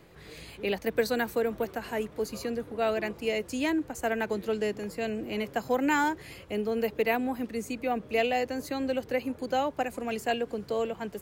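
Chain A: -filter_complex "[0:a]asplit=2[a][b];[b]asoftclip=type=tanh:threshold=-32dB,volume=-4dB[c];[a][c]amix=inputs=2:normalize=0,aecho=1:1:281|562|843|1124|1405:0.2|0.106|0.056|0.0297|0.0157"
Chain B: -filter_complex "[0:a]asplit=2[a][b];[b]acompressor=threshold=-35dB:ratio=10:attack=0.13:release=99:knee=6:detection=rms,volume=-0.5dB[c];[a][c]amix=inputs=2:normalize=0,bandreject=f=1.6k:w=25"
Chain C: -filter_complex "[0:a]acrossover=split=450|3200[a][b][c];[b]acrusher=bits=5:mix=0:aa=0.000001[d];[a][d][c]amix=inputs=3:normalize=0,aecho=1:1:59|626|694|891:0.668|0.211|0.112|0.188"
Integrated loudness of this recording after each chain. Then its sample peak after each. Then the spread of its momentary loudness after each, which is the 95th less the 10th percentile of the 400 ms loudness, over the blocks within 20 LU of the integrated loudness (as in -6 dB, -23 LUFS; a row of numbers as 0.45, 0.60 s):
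-28.0, -28.5, -28.5 LUFS; -12.5, -13.5, -12.0 dBFS; 5, 6, 6 LU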